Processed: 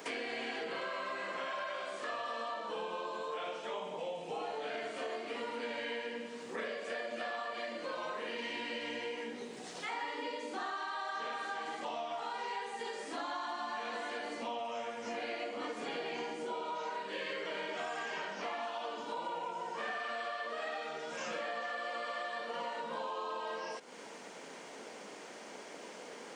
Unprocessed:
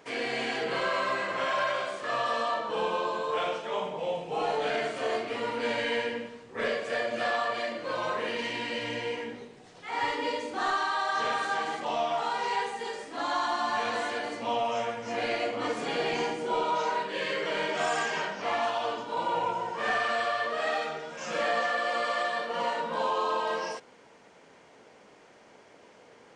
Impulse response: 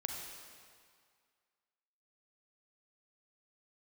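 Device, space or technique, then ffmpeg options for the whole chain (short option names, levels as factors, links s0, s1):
ASMR close-microphone chain: -filter_complex "[0:a]highpass=f=190:w=0.5412,highpass=f=190:w=1.3066,acrossover=split=4000[s0][s1];[s1]acompressor=threshold=0.00178:ratio=4:attack=1:release=60[s2];[s0][s2]amix=inputs=2:normalize=0,lowshelf=f=140:g=5.5,acompressor=threshold=0.00562:ratio=5,highshelf=f=4400:g=5.5,highshelf=f=6200:g=4.5,volume=1.88"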